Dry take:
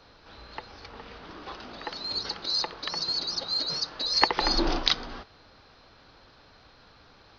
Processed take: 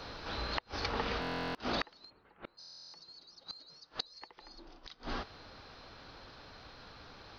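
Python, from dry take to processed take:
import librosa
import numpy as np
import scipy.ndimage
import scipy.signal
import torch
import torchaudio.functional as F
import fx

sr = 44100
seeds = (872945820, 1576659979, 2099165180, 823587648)

y = fx.rider(x, sr, range_db=5, speed_s=0.5)
y = fx.gate_flip(y, sr, shuts_db=-23.0, range_db=-31)
y = fx.steep_lowpass(y, sr, hz=2600.0, slope=36, at=(2.09, 2.57), fade=0.02)
y = fx.buffer_glitch(y, sr, at_s=(1.2, 2.59), block=1024, repeats=14)
y = F.gain(torch.from_numpy(y), 4.5).numpy()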